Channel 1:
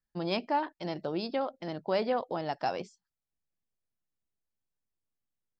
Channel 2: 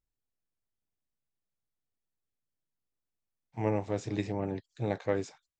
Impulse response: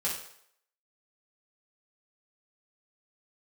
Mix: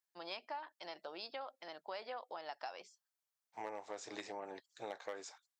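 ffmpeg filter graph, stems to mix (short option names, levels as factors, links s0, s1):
-filter_complex "[0:a]volume=0.596[s0];[1:a]equalizer=f=2500:t=o:w=0.92:g=-6,asoftclip=type=hard:threshold=0.0944,volume=1.33[s1];[s0][s1]amix=inputs=2:normalize=0,highpass=810,acompressor=threshold=0.00891:ratio=6"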